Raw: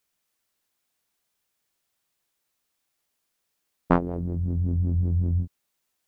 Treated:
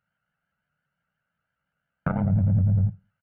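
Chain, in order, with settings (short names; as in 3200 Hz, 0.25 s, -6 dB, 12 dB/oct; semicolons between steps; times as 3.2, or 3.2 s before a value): minimum comb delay 0.68 ms; HPF 43 Hz 24 dB/oct; comb 1.4 ms, depth 98%; compressor, threshold -19 dBFS, peak gain reduction 7 dB; LPF 2300 Hz 24 dB/oct; granular stretch 0.53×, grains 31 ms; fifteen-band EQ 160 Hz +11 dB, 630 Hz +5 dB, 1600 Hz +5 dB; limiter -16.5 dBFS, peak gain reduction 10 dB; reverb RT60 0.30 s, pre-delay 37 ms, DRR 17.5 dB; shaped vibrato saw up 5.8 Hz, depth 100 cents; gain +2 dB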